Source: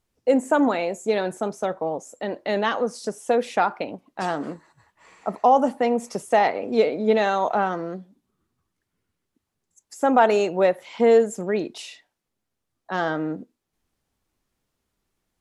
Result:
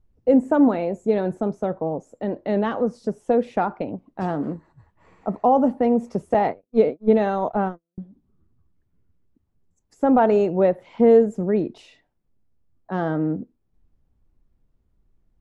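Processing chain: 6.34–7.98 s: gate -22 dBFS, range -59 dB; tilt EQ -4.5 dB/octave; trim -3.5 dB

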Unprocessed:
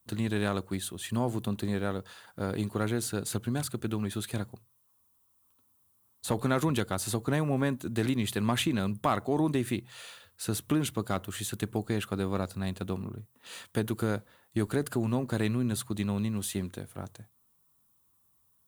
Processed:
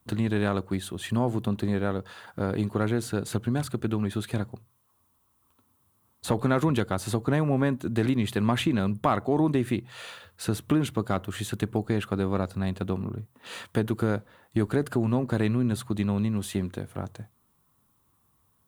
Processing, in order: treble shelf 3.8 kHz -11 dB; in parallel at +1 dB: compression, threshold -41 dBFS, peak gain reduction 17 dB; on the sum: trim +2.5 dB

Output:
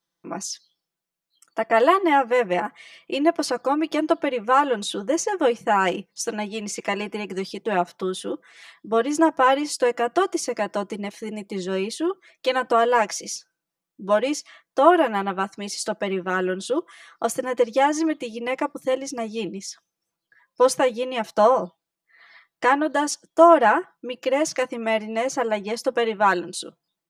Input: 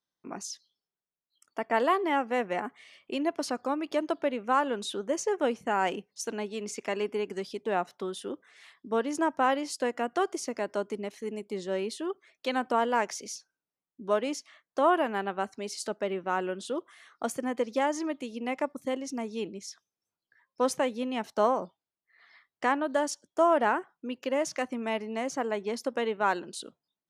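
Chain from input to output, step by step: comb 6 ms, depth 76%; trim +6 dB

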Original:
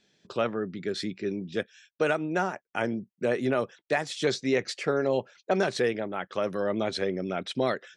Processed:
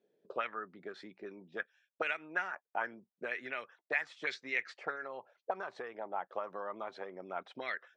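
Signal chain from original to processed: 4.95–7.36 s: compression 6:1, threshold -27 dBFS, peak gain reduction 7.5 dB; auto-wah 460–2200 Hz, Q 3.3, up, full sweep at -21.5 dBFS; trim +2.5 dB

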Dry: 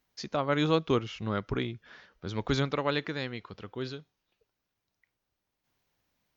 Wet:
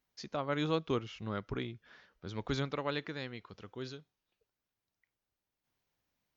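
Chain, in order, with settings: 3.49–3.97 s: peaking EQ 6.3 kHz +7.5 dB 0.49 oct; trim -6.5 dB

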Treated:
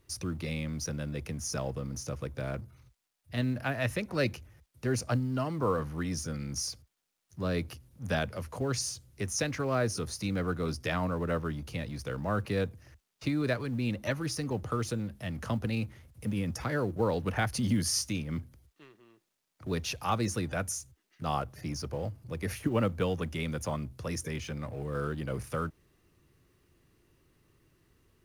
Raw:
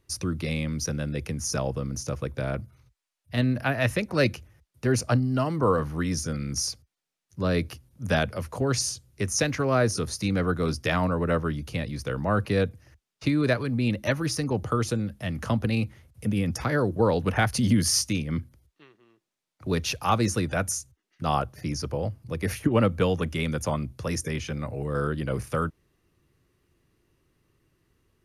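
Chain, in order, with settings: companding laws mixed up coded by mu; trim -7 dB

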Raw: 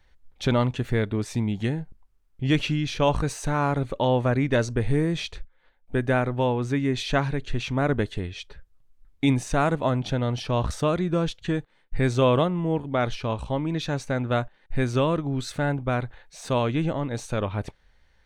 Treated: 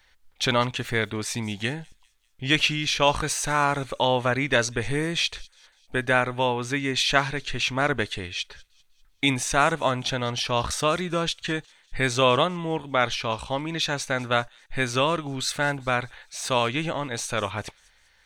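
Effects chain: tilt shelf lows -8 dB, about 720 Hz; on a send: feedback echo behind a high-pass 198 ms, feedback 47%, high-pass 4.8 kHz, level -18 dB; on the sum: trim +1.5 dB

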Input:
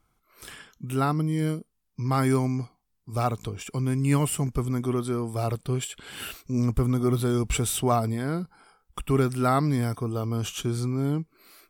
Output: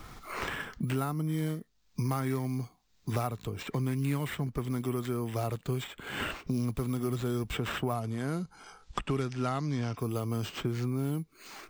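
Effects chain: careless resampling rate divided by 4×, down none, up hold; 7.93–9.97 s: low-pass 11 kHz -> 6 kHz 24 dB/octave; three bands compressed up and down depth 100%; trim -7 dB

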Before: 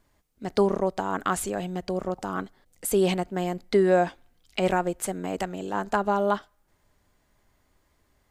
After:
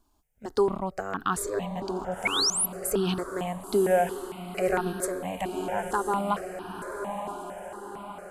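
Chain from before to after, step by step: echo that smears into a reverb 1028 ms, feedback 55%, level -7 dB; painted sound rise, 2.25–2.66 s, 2.1–12 kHz -21 dBFS; stepped phaser 4.4 Hz 520–2100 Hz

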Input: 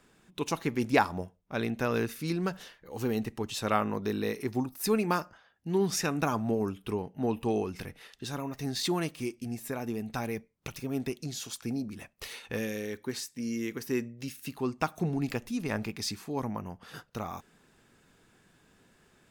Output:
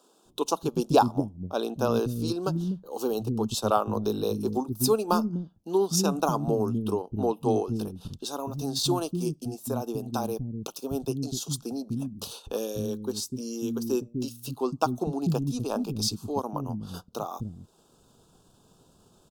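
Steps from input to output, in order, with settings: transient shaper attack +2 dB, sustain -7 dB; Butterworth band-stop 2 kHz, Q 0.89; bands offset in time highs, lows 250 ms, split 270 Hz; trim +5.5 dB

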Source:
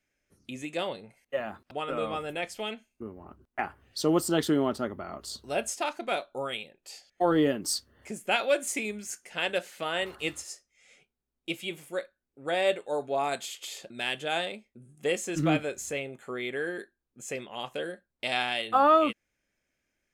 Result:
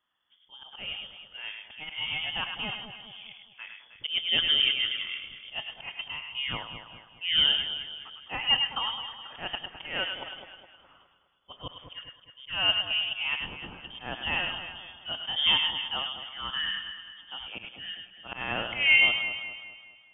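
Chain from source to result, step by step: slow attack 176 ms; echo whose repeats swap between lows and highs 104 ms, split 2.3 kHz, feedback 67%, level -4.5 dB; frequency inversion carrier 3.4 kHz

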